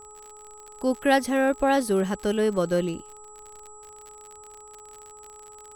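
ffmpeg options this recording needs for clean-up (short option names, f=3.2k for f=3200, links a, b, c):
-af "adeclick=t=4,bandreject=f=422.1:t=h:w=4,bandreject=f=844.2:t=h:w=4,bandreject=f=1.2663k:t=h:w=4,bandreject=f=7.8k:w=30"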